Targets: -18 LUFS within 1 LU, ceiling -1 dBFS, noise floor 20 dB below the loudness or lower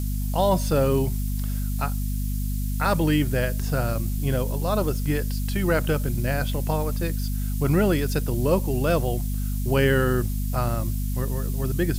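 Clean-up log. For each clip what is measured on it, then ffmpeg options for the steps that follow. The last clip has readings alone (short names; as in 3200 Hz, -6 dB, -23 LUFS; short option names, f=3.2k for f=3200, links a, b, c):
hum 50 Hz; harmonics up to 250 Hz; hum level -24 dBFS; noise floor -26 dBFS; noise floor target -45 dBFS; loudness -25.0 LUFS; peak -8.5 dBFS; loudness target -18.0 LUFS
-> -af "bandreject=f=50:t=h:w=6,bandreject=f=100:t=h:w=6,bandreject=f=150:t=h:w=6,bandreject=f=200:t=h:w=6,bandreject=f=250:t=h:w=6"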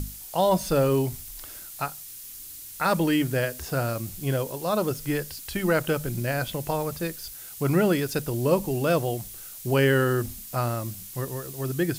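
hum none; noise floor -42 dBFS; noise floor target -46 dBFS
-> -af "afftdn=nr=6:nf=-42"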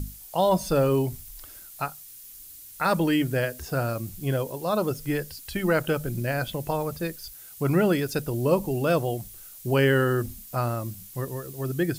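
noise floor -45 dBFS; noise floor target -47 dBFS
-> -af "afftdn=nr=6:nf=-45"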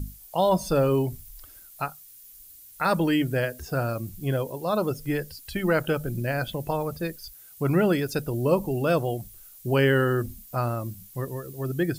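noise floor -49 dBFS; loudness -26.5 LUFS; peak -10.0 dBFS; loudness target -18.0 LUFS
-> -af "volume=8.5dB"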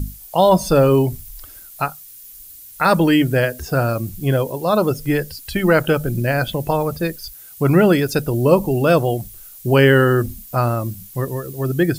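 loudness -18.0 LUFS; peak -1.5 dBFS; noise floor -40 dBFS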